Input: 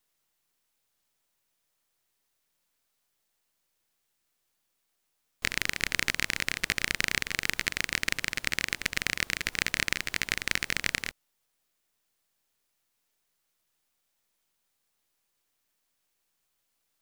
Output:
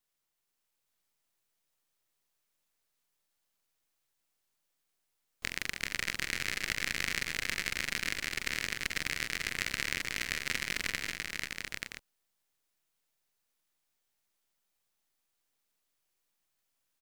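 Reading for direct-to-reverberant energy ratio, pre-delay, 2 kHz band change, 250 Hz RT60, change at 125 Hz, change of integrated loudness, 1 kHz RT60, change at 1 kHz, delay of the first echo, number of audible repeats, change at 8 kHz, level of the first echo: no reverb, no reverb, -4.0 dB, no reverb, -4.5 dB, -4.5 dB, no reverb, -4.0 dB, 45 ms, 5, -4.0 dB, -9.5 dB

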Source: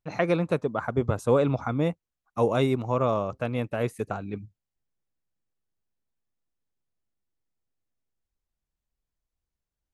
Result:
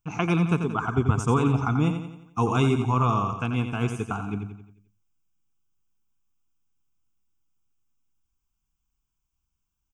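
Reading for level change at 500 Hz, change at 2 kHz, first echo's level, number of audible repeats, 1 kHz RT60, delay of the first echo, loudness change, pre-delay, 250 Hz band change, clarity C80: -5.0 dB, +2.5 dB, -8.0 dB, 5, no reverb, 88 ms, +1.5 dB, no reverb, +4.0 dB, no reverb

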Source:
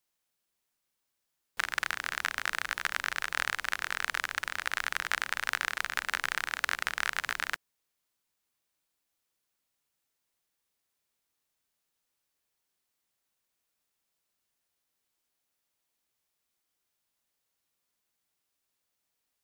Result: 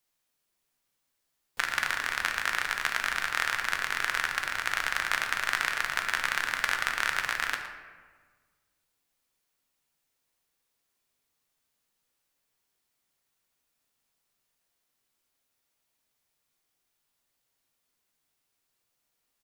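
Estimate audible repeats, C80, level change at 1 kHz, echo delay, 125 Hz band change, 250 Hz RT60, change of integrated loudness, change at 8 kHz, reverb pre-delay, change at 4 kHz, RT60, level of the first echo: 1, 7.0 dB, +4.0 dB, 115 ms, +5.0 dB, 1.8 s, +3.5 dB, +3.0 dB, 4 ms, +3.0 dB, 1.5 s, -13.5 dB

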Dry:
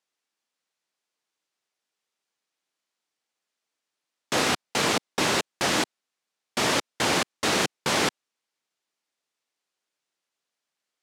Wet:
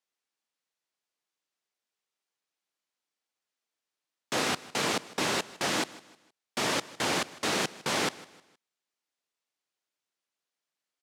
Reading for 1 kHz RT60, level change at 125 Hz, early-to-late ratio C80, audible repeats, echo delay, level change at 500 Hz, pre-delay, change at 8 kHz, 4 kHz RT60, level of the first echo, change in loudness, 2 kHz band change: no reverb, -5.5 dB, no reverb, 2, 156 ms, -5.0 dB, no reverb, -5.0 dB, no reverb, -19.5 dB, -5.0 dB, -5.0 dB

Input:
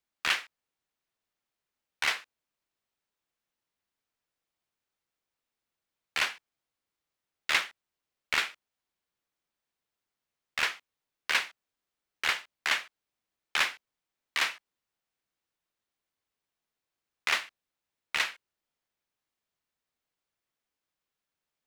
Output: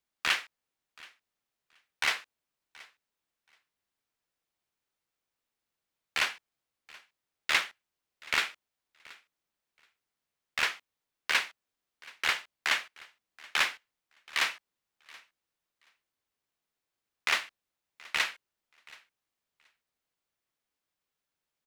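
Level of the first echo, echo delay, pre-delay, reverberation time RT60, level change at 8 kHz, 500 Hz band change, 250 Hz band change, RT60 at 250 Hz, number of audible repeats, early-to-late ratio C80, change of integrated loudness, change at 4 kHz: -23.0 dB, 727 ms, no reverb, no reverb, 0.0 dB, 0.0 dB, 0.0 dB, no reverb, 1, no reverb, 0.0 dB, 0.0 dB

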